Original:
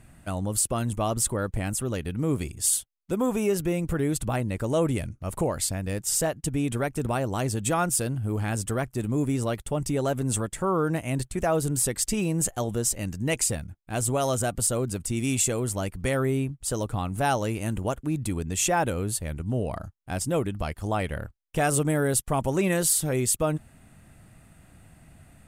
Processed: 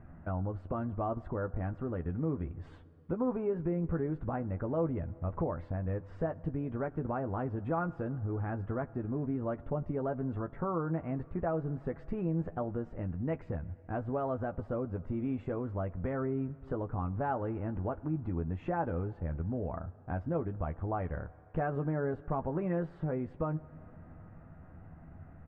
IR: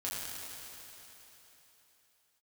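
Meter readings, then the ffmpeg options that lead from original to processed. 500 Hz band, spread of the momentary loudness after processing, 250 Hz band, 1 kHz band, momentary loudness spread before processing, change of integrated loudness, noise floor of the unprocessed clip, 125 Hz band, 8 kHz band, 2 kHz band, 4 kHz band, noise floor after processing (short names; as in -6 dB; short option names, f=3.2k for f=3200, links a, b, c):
-7.5 dB, 7 LU, -6.5 dB, -8.0 dB, 6 LU, -9.0 dB, -56 dBFS, -6.5 dB, under -40 dB, -13.5 dB, under -30 dB, -54 dBFS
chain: -filter_complex "[0:a]lowpass=f=1.5k:w=0.5412,lowpass=f=1.5k:w=1.3066,acompressor=threshold=-38dB:ratio=2,asplit=2[a][b];[b]adelay=12,volume=-7.5dB[c];[a][c]amix=inputs=2:normalize=0,asplit=2[d][e];[1:a]atrim=start_sample=2205[f];[e][f]afir=irnorm=-1:irlink=0,volume=-21dB[g];[d][g]amix=inputs=2:normalize=0"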